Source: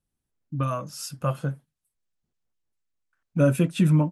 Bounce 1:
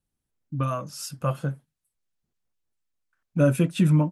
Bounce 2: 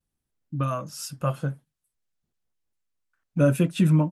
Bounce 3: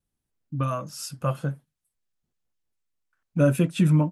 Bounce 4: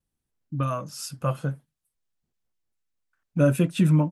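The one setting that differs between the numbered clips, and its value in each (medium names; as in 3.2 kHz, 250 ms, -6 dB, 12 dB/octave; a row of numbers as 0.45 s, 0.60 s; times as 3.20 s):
vibrato, rate: 3 Hz, 0.32 Hz, 1.5 Hz, 0.63 Hz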